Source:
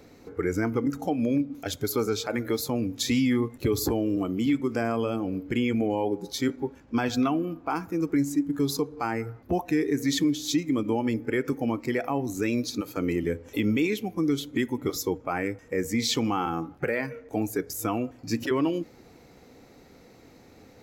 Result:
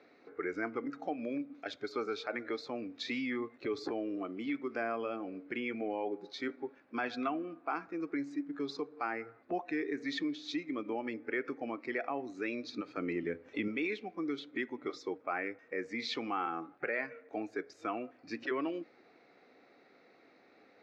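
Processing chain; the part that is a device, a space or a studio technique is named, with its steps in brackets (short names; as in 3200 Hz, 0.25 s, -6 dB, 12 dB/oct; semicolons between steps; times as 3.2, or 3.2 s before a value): 12.64–13.68 tone controls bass +9 dB, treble +1 dB; phone earpiece (speaker cabinet 460–3700 Hz, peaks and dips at 490 Hz -5 dB, 920 Hz -8 dB, 3100 Hz -9 dB); gain -3 dB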